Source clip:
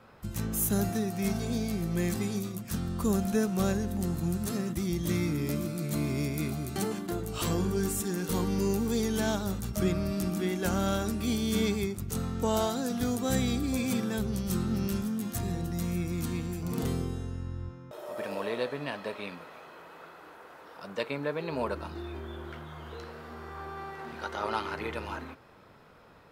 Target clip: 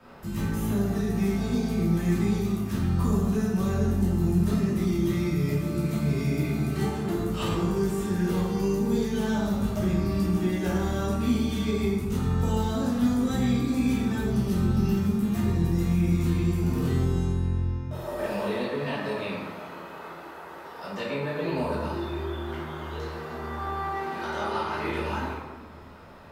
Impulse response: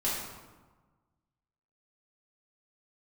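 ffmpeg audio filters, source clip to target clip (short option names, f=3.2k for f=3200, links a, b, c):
-filter_complex "[0:a]acrossover=split=140|3800[a][b][c];[a]acompressor=threshold=-36dB:ratio=4[d];[b]acompressor=threshold=-34dB:ratio=4[e];[c]acompressor=threshold=-54dB:ratio=4[f];[d][e][f]amix=inputs=3:normalize=0[g];[1:a]atrim=start_sample=2205[h];[g][h]afir=irnorm=-1:irlink=0"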